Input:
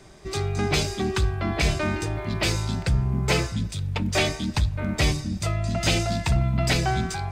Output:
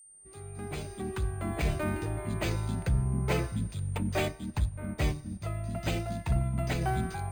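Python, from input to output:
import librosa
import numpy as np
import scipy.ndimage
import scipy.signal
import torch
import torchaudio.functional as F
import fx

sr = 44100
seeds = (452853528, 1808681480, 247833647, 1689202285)

y = fx.fade_in_head(x, sr, length_s=1.83)
y = np.repeat(scipy.signal.resample_poly(y, 1, 4), 4)[:len(y)]
y = fx.high_shelf(y, sr, hz=2700.0, db=-10.5)
y = y + 10.0 ** (-47.0 / 20.0) * np.sin(2.0 * np.pi * 8800.0 * np.arange(len(y)) / sr)
y = fx.upward_expand(y, sr, threshold_db=-34.0, expansion=1.5, at=(4.28, 6.81))
y = F.gain(torch.from_numpy(y), -5.0).numpy()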